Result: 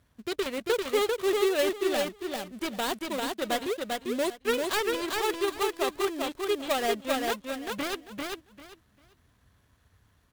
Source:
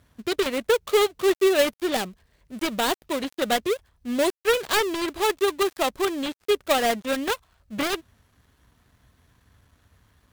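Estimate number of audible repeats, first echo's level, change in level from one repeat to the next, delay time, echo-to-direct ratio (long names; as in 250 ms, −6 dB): 3, −3.0 dB, −14.0 dB, 395 ms, −3.0 dB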